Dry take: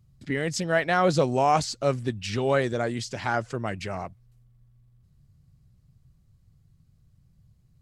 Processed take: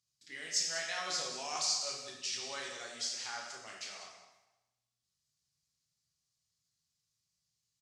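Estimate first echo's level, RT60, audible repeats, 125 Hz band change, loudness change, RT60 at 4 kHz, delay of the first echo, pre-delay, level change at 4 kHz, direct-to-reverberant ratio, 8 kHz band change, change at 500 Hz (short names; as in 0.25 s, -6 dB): -12.0 dB, 1.0 s, 1, -34.0 dB, -10.0 dB, 0.90 s, 0.191 s, 5 ms, +0.5 dB, -2.5 dB, +2.5 dB, -22.0 dB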